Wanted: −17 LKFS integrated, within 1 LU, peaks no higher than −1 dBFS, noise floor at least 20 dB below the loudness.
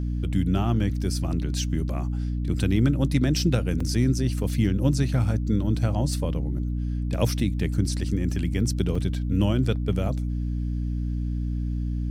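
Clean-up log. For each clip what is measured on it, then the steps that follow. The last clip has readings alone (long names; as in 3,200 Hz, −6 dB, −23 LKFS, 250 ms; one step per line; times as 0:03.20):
number of dropouts 2; longest dropout 4.5 ms; mains hum 60 Hz; hum harmonics up to 300 Hz; level of the hum −24 dBFS; integrated loudness −25.5 LKFS; sample peak −6.5 dBFS; target loudness −17.0 LKFS
→ repair the gap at 0:03.80/0:08.95, 4.5 ms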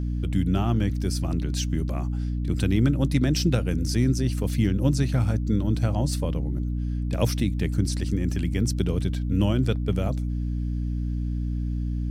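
number of dropouts 0; mains hum 60 Hz; hum harmonics up to 300 Hz; level of the hum −24 dBFS
→ mains-hum notches 60/120/180/240/300 Hz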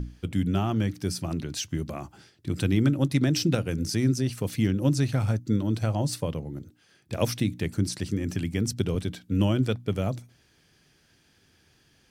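mains hum none found; integrated loudness −27.0 LKFS; sample peak −8.5 dBFS; target loudness −17.0 LKFS
→ level +10 dB
brickwall limiter −1 dBFS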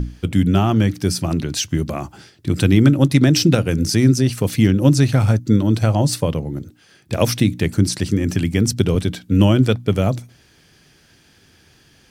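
integrated loudness −17.5 LKFS; sample peak −1.0 dBFS; background noise floor −54 dBFS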